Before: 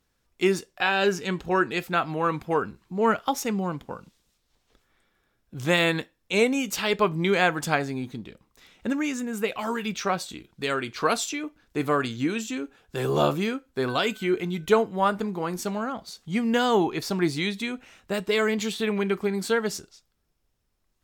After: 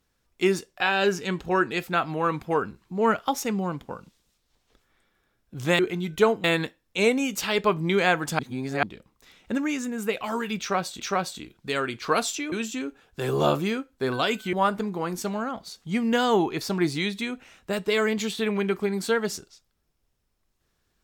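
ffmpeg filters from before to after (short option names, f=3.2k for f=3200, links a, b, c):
-filter_complex "[0:a]asplit=8[a][b][c][d][e][f][g][h];[a]atrim=end=5.792[i];[b]atrim=start=14.288:end=14.942[j];[c]atrim=start=5.788:end=7.742[k];[d]atrim=start=7.738:end=8.182,asetpts=PTS-STARTPTS,areverse[l];[e]atrim=start=8.178:end=10.352[m];[f]atrim=start=9.938:end=11.462[n];[g]atrim=start=12.278:end=14.292[o];[h]atrim=start=14.938[p];[i][j]acrossfade=d=0.004:c1=hsin:c2=hsin[q];[q][k]acrossfade=d=0.004:c1=hsin:c2=hsin[r];[r][l]acrossfade=d=0.004:c1=hsin:c2=hsin[s];[s][m]acrossfade=d=0.004:c1=hsin:c2=hsin[t];[t][n]acrossfade=d=0.004:c1=hsin:c2=hsin[u];[u][o]acrossfade=d=0.004:c1=hsin:c2=hsin[v];[v][p]acrossfade=d=0.004:c1=hsin:c2=hsin"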